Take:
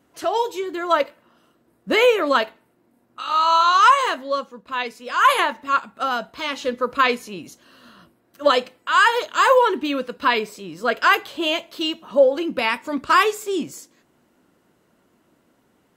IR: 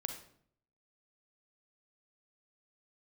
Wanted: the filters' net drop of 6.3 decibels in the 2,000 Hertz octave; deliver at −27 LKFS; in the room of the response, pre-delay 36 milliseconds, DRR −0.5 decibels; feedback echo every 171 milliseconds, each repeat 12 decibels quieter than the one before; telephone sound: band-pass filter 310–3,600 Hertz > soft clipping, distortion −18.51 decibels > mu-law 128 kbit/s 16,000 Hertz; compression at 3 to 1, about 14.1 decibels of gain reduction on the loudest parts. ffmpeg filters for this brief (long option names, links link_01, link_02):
-filter_complex "[0:a]equalizer=frequency=2000:width_type=o:gain=-8.5,acompressor=threshold=-31dB:ratio=3,aecho=1:1:171|342|513:0.251|0.0628|0.0157,asplit=2[link_01][link_02];[1:a]atrim=start_sample=2205,adelay=36[link_03];[link_02][link_03]afir=irnorm=-1:irlink=0,volume=0.5dB[link_04];[link_01][link_04]amix=inputs=2:normalize=0,highpass=310,lowpass=3600,asoftclip=threshold=-20.5dB,volume=4dB" -ar 16000 -c:a pcm_mulaw